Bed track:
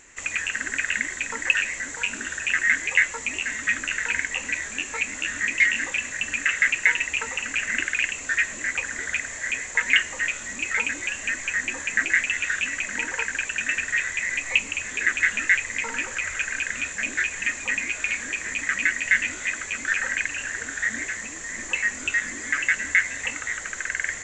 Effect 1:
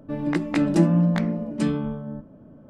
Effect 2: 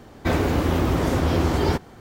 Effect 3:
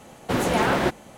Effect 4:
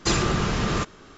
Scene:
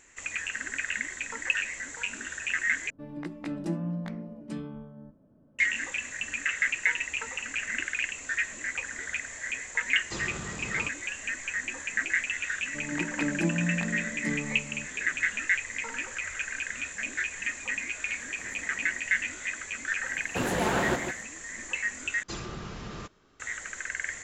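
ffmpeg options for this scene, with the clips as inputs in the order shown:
-filter_complex "[1:a]asplit=2[a][b];[4:a]asplit=2[c][d];[3:a]asplit=2[e][f];[0:a]volume=-6.5dB[g];[c]highpass=49[h];[b]dynaudnorm=f=150:g=3:m=4dB[i];[e]acompressor=threshold=-35dB:ratio=6:attack=3.2:release=140:knee=1:detection=peak[j];[f]aecho=1:1:151:0.447[k];[g]asplit=3[l][m][n];[l]atrim=end=2.904[o];[a]atrim=end=2.69,asetpts=PTS-STARTPTS,volume=-13.5dB[p];[m]atrim=start=5.586:end=22.234[q];[d]atrim=end=1.17,asetpts=PTS-STARTPTS,volume=-15.5dB[r];[n]atrim=start=23.396[s];[h]atrim=end=1.17,asetpts=PTS-STARTPTS,volume=-15dB,afade=t=in:d=0.004:c=hsin,afade=t=out:st=1.166:d=0.004:c=hsin,adelay=10050[t];[i]atrim=end=2.69,asetpts=PTS-STARTPTS,volume=-13dB,afade=t=in:d=0.004:c=hsin,afade=t=out:st=2.686:d=0.004:c=hsin,adelay=12650[u];[j]atrim=end=1.17,asetpts=PTS-STARTPTS,volume=-15.5dB,afade=t=in:d=0.004:c=hsin,afade=t=out:st=1.166:d=0.004:c=hsin,adelay=18100[v];[k]atrim=end=1.17,asetpts=PTS-STARTPTS,volume=-6.5dB,afade=t=in:d=0.004:c=hsin,afade=t=out:st=1.166:d=0.004:c=hsin,adelay=20060[w];[o][p]acrossfade=d=0.004:c1=hsin:c2=hsin[x];[x][q]acrossfade=d=0.004:c1=hsin:c2=hsin[y];[y][r]acrossfade=d=0.004:c1=hsin:c2=hsin[z];[z][s]acrossfade=d=0.004:c1=hsin:c2=hsin[aa];[aa][t][u][v][w]amix=inputs=5:normalize=0"

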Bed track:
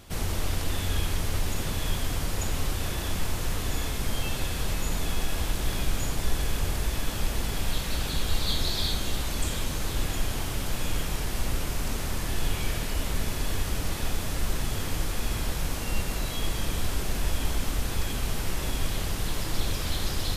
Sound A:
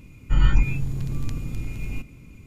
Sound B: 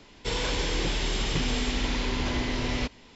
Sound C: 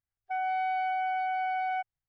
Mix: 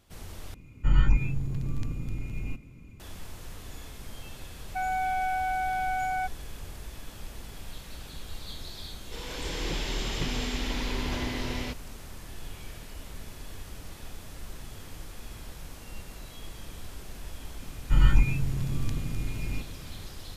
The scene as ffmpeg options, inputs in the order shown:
-filter_complex "[1:a]asplit=2[a][b];[0:a]volume=-13.5dB[c];[a]highshelf=f=2.9k:g=-5[d];[3:a]lowpass=f=1.8k:t=q:w=1.7[e];[2:a]dynaudnorm=f=230:g=5:m=12dB[f];[c]asplit=2[g][h];[g]atrim=end=0.544[i];[d]atrim=end=2.46,asetpts=PTS-STARTPTS,volume=-3.5dB[j];[h]atrim=start=2.996[k];[e]atrim=end=2.08,asetpts=PTS-STARTPTS,volume=-0.5dB,afade=t=in:d=0.004:c=hsin,afade=t=out:st=2.076:d=0.004:c=hsin,adelay=196245S[l];[f]atrim=end=3.15,asetpts=PTS-STARTPTS,volume=-14.5dB,afade=t=in:d=0.004:c=hsin,afade=t=out:st=3.146:d=0.004:c=hsin,adelay=8860[m];[b]atrim=end=2.46,asetpts=PTS-STARTPTS,volume=-2dB,afade=t=in:d=0.004:c=hsin,afade=t=out:st=2.456:d=0.004:c=hsin,adelay=17600[n];[i][j]acrossfade=d=0.004:c1=hsin:c2=hsin[o];[o][k]acrossfade=d=0.004:c1=hsin:c2=hsin[p];[p][l][m][n]amix=inputs=4:normalize=0"

